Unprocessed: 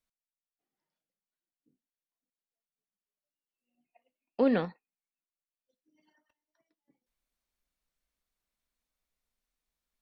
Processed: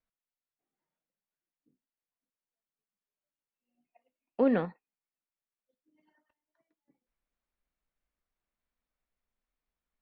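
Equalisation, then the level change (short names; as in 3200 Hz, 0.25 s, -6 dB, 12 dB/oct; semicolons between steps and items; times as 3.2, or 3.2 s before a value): LPF 2300 Hz 12 dB/oct; 0.0 dB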